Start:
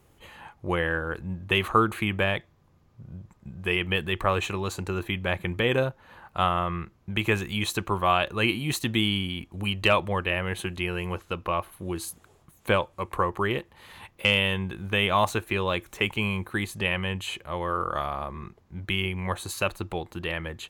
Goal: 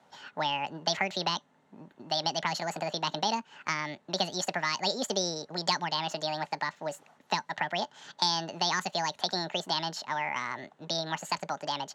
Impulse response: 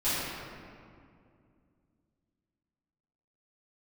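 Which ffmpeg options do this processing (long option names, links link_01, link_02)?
-filter_complex "[0:a]highpass=150,equalizer=frequency=190:width_type=q:width=4:gain=-8,equalizer=frequency=500:width_type=q:width=4:gain=7,equalizer=frequency=1300:width_type=q:width=4:gain=-4,equalizer=frequency=2900:width_type=q:width=4:gain=-7,lowpass=frequency=4600:width=0.5412,lowpass=frequency=4600:width=1.3066,asetrate=76440,aresample=44100,acrossover=split=290|3000[link_01][link_02][link_03];[link_02]acompressor=threshold=-29dB:ratio=6[link_04];[link_01][link_04][link_03]amix=inputs=3:normalize=0"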